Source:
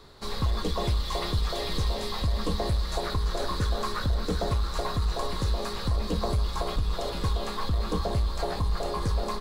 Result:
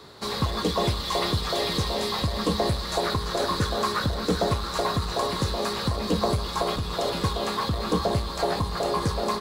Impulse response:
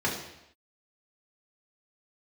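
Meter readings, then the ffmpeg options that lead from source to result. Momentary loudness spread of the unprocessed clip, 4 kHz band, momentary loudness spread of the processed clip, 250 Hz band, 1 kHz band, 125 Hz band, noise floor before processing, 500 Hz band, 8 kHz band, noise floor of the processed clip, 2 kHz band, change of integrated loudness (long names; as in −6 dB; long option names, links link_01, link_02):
2 LU, +6.0 dB, 2 LU, +5.5 dB, +6.0 dB, +0.5 dB, −33 dBFS, +6.0 dB, +6.0 dB, −32 dBFS, +6.0 dB, +3.5 dB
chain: -af "highpass=110,volume=6dB"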